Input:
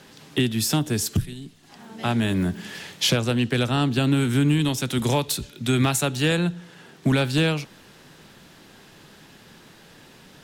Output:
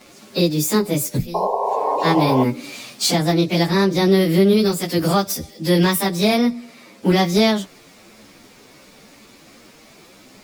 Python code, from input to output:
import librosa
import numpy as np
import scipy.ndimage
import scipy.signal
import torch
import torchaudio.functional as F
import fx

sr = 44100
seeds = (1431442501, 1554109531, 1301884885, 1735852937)

y = fx.pitch_bins(x, sr, semitones=5.5)
y = fx.spec_paint(y, sr, seeds[0], shape='noise', start_s=1.34, length_s=1.1, low_hz=390.0, high_hz=1100.0, level_db=-27.0)
y = y * 10.0 ** (6.5 / 20.0)